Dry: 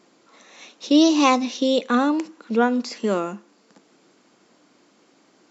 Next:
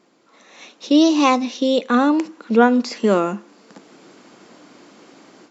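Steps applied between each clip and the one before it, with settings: high shelf 4800 Hz -5 dB; AGC gain up to 13 dB; gain -1 dB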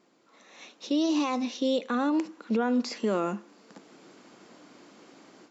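limiter -12 dBFS, peak gain reduction 10.5 dB; gain -6.5 dB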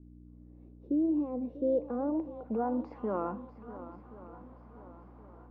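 swung echo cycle 1.074 s, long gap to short 1.5:1, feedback 39%, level -14.5 dB; hum 60 Hz, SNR 16 dB; low-pass sweep 310 Hz -> 1000 Hz, 0.43–3.15; gain -8 dB

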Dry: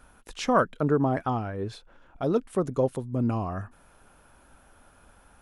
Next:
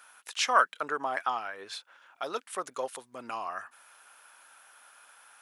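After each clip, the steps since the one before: HPF 1300 Hz 12 dB/oct; gain +6.5 dB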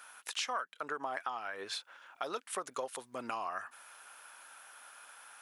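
compressor 8:1, threshold -36 dBFS, peak gain reduction 19 dB; gain +2 dB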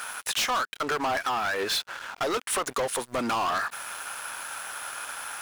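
sample leveller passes 5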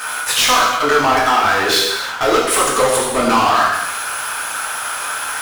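reverb, pre-delay 3 ms, DRR -5.5 dB; gain +7 dB

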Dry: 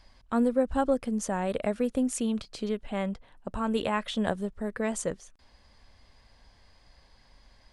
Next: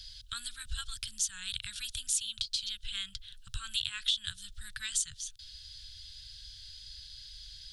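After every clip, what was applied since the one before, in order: Chebyshev band-stop 120–1500 Hz, order 4; resonant high shelf 2700 Hz +9.5 dB, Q 3; compressor 2:1, threshold -40 dBFS, peak gain reduction 11.5 dB; gain +4.5 dB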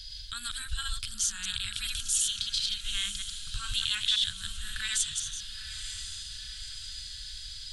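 reverse delay 0.104 s, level -1 dB; harmonic-percussive split harmonic +5 dB; diffused feedback echo 0.961 s, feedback 55%, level -11 dB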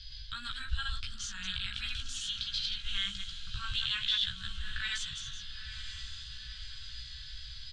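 air absorption 190 m; doubler 16 ms -4.5 dB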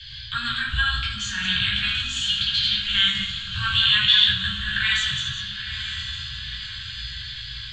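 reverb RT60 0.90 s, pre-delay 3 ms, DRR -4.5 dB

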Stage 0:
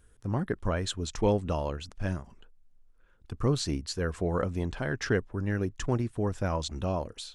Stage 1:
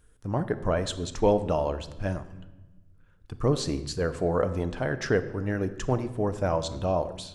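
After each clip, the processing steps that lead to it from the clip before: shoebox room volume 900 m³, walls mixed, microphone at 0.48 m; dynamic EQ 630 Hz, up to +7 dB, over -43 dBFS, Q 1.2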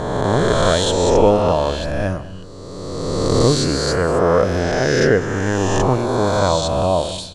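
spectral swells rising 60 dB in 2.22 s; echo 0.201 s -19 dB; gain +6.5 dB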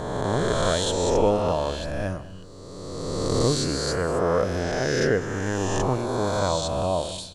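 high shelf 8900 Hz +7.5 dB; gain -7.5 dB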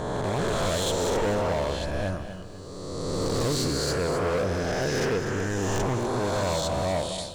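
overloaded stage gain 23 dB; lo-fi delay 0.249 s, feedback 35%, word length 10-bit, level -10.5 dB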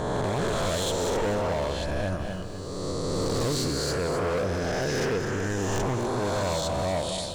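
limiter -26.5 dBFS, peak gain reduction 6.5 dB; gain +5 dB

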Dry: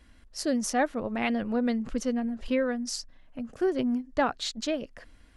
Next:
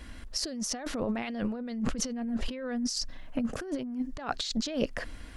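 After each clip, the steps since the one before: dynamic EQ 5000 Hz, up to +7 dB, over -48 dBFS, Q 1.1; negative-ratio compressor -37 dBFS, ratio -1; gain +4 dB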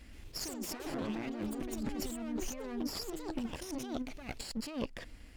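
minimum comb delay 0.4 ms; echoes that change speed 0.127 s, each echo +4 st, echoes 2; gain -7.5 dB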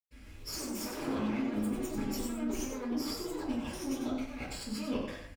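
echo 94 ms -7 dB; reverb RT60 0.50 s, pre-delay 0.108 s

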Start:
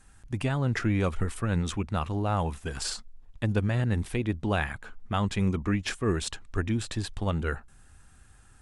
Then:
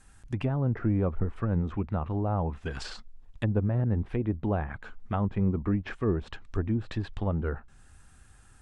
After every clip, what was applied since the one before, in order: treble ducked by the level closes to 850 Hz, closed at -24 dBFS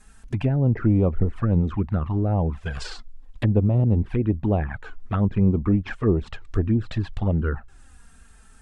envelope flanger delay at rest 5 ms, full sweep at -22.5 dBFS; gain +7.5 dB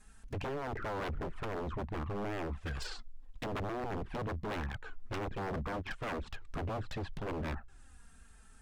wavefolder -25 dBFS; gain -7 dB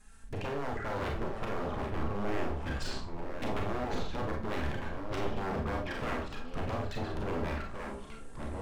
echoes that change speed 0.578 s, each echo -3 st, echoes 3, each echo -6 dB; Schroeder reverb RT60 0.32 s, combs from 28 ms, DRR 1 dB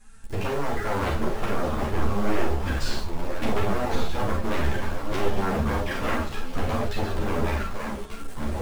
in parallel at -6 dB: bit-crush 7-bit; on the sum: ensemble effect; gain +7.5 dB

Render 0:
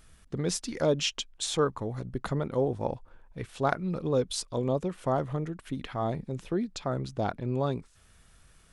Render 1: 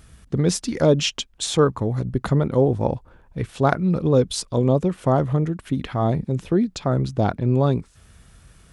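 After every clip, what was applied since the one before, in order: HPF 44 Hz; low shelf 330 Hz +7.5 dB; gain +6 dB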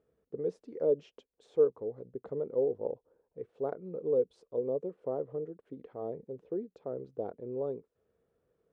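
band-pass 460 Hz, Q 5.7; gain -5 dB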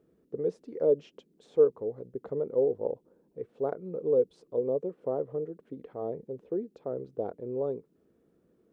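band noise 150–400 Hz -73 dBFS; gain +3.5 dB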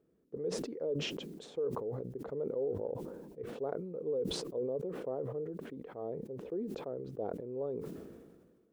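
limiter -21.5 dBFS, peak gain reduction 9 dB; sustainer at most 36 dB/s; gain -6.5 dB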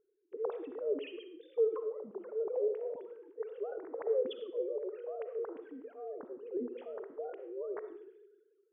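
sine-wave speech; reverb RT60 0.55 s, pre-delay 20 ms, DRR 9 dB

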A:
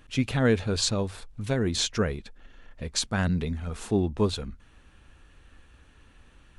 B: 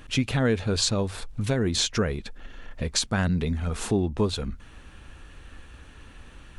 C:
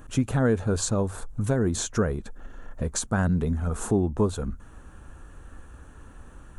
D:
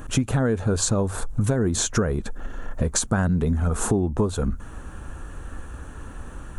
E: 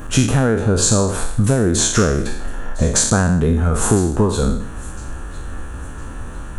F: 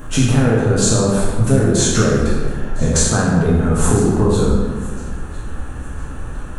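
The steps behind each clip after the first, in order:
compressor 2:1, threshold -35 dBFS, peak gain reduction 10 dB; gain +8.5 dB
band shelf 3200 Hz -13 dB; gain +1 dB
compressor 4:1, threshold -28 dBFS, peak gain reduction 9.5 dB; gain +9 dB
spectral trails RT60 0.67 s; thin delay 1.007 s, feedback 33%, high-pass 2000 Hz, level -19 dB; gain +5 dB
reverb RT60 1.6 s, pre-delay 3 ms, DRR -2.5 dB; gain -3.5 dB

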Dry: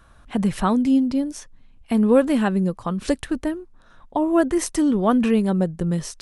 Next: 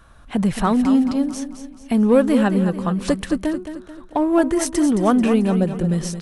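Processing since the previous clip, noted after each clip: in parallel at -8.5 dB: hard clip -21 dBFS, distortion -7 dB; on the sum: feedback echo 0.219 s, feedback 44%, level -10 dB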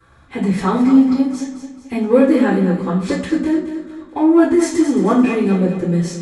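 bell 72 Hz +11.5 dB 0.81 oct; reverb RT60 0.50 s, pre-delay 3 ms, DRR -17 dB; gain -13 dB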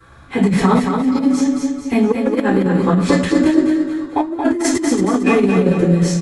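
negative-ratio compressor -17 dBFS, ratio -0.5; on a send: feedback echo 0.226 s, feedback 31%, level -5.5 dB; on the sum: gain +2.5 dB

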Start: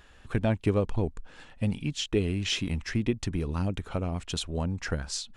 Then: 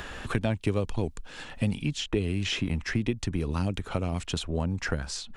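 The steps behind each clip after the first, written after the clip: three-band squash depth 70%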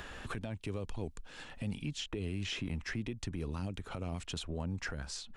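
limiter -21.5 dBFS, peak gain reduction 9.5 dB; gain -7 dB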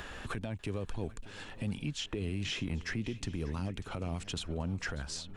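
swung echo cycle 0.789 s, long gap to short 3:1, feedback 33%, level -18 dB; gain +2 dB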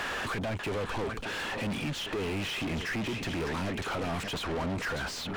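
overdrive pedal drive 37 dB, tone 2200 Hz, clips at -25.5 dBFS

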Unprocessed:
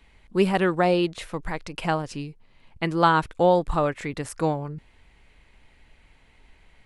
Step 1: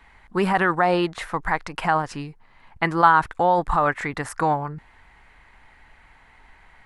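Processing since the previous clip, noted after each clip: band shelf 1200 Hz +10.5 dB; in parallel at -3 dB: negative-ratio compressor -19 dBFS, ratio -0.5; on the sum: gain -6 dB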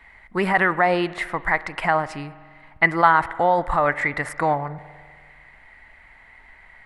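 thirty-one-band EQ 630 Hz +6 dB, 2000 Hz +11 dB, 6300 Hz -4 dB; spring tank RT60 1.8 s, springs 48 ms, chirp 25 ms, DRR 16.5 dB; gain -1.5 dB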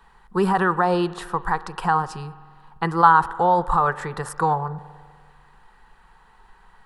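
fixed phaser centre 420 Hz, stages 8; gain +3.5 dB

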